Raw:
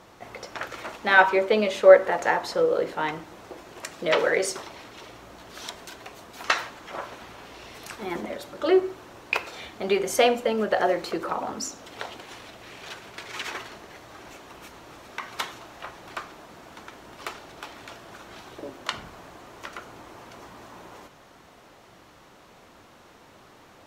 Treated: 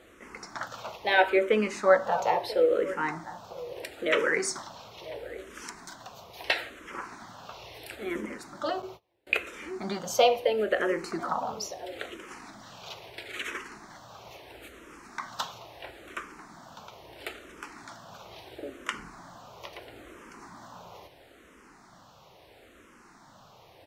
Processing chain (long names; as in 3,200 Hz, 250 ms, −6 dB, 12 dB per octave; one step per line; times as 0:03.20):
slap from a distant wall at 170 metres, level −16 dB
0:08.82–0:09.27: noise gate −37 dBFS, range −29 dB
frequency shifter mixed with the dry sound −0.75 Hz